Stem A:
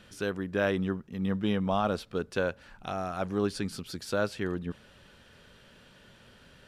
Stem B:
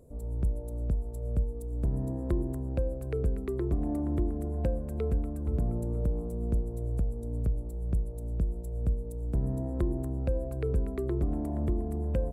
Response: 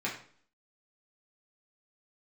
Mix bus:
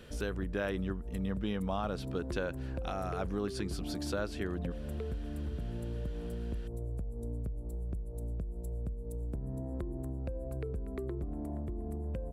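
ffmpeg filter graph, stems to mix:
-filter_complex "[0:a]volume=-1dB[a];[1:a]acompressor=threshold=-35dB:ratio=6,volume=1.5dB[b];[a][b]amix=inputs=2:normalize=0,acompressor=threshold=-33dB:ratio=2.5"

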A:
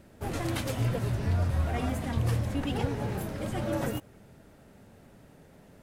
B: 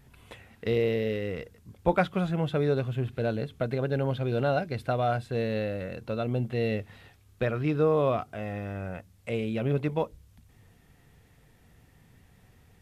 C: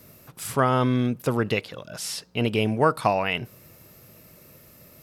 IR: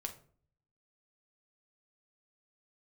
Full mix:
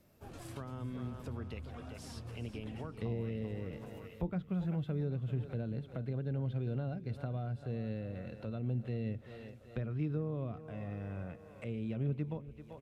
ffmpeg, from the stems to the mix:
-filter_complex "[0:a]bandreject=f=2k:w=7.5,acompressor=threshold=-30dB:ratio=2,volume=-15dB[a];[1:a]adelay=2350,volume=-5dB,asplit=2[b][c];[c]volume=-16.5dB[d];[2:a]volume=-18dB,asplit=2[e][f];[f]volume=-10.5dB[g];[d][g]amix=inputs=2:normalize=0,aecho=0:1:388|776|1164|1552|1940|2328|2716|3104:1|0.52|0.27|0.141|0.0731|0.038|0.0198|0.0103[h];[a][b][e][h]amix=inputs=4:normalize=0,highshelf=f=11k:g=-10.5,acrossover=split=280[i][j];[j]acompressor=threshold=-47dB:ratio=6[k];[i][k]amix=inputs=2:normalize=0"

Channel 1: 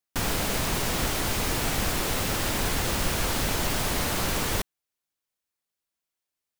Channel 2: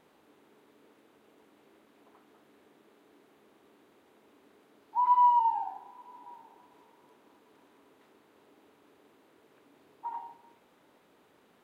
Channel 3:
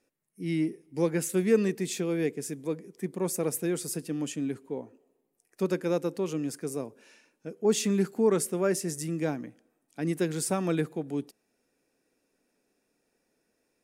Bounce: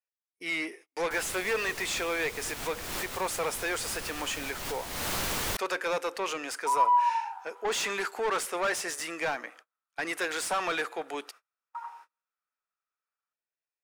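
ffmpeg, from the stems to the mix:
-filter_complex "[0:a]adelay=950,volume=-2dB[a];[1:a]highpass=f=1.3k:t=q:w=8.5,adelay=1700,volume=-1.5dB[b];[2:a]highpass=810,highshelf=f=3k:g=-2.5,asplit=2[c][d];[d]highpass=f=720:p=1,volume=24dB,asoftclip=type=tanh:threshold=-20dB[e];[c][e]amix=inputs=2:normalize=0,lowpass=f=2.4k:p=1,volume=-6dB,volume=2dB,asplit=2[f][g];[g]apad=whole_len=332830[h];[a][h]sidechaincompress=threshold=-40dB:ratio=6:attack=6.8:release=294[i];[i][b][f]amix=inputs=3:normalize=0,lowshelf=f=470:g=-6.5,agate=range=-35dB:threshold=-51dB:ratio=16:detection=peak"

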